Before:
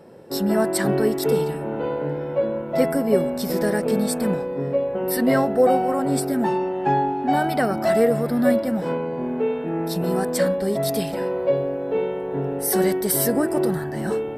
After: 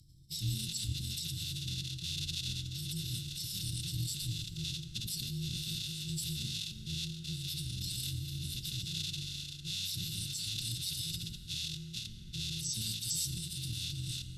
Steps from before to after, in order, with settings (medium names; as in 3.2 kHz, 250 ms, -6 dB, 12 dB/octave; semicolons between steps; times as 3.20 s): rattle on loud lows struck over -32 dBFS, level -12 dBFS; Chebyshev band-stop 210–3600 Hz, order 5; hum notches 60/120/180/240/300/360/420/480/540/600 Hz; in parallel at +1 dB: compressor with a negative ratio -35 dBFS, ratio -0.5; on the sum: formant-preserving pitch shift -9.5 st; feedback echo behind a band-pass 224 ms, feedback 82%, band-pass 740 Hz, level -9.5 dB; on a send at -10 dB: reverberation RT60 2.0 s, pre-delay 4 ms; on the sum: AM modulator 190 Hz, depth 20%; trim -8.5 dB